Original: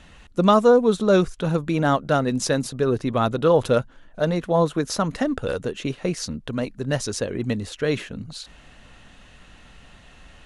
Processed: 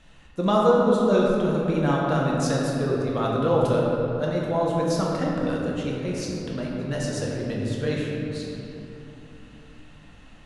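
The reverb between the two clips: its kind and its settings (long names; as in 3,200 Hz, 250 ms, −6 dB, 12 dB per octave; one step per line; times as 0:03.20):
rectangular room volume 140 cubic metres, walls hard, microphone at 0.67 metres
level −8 dB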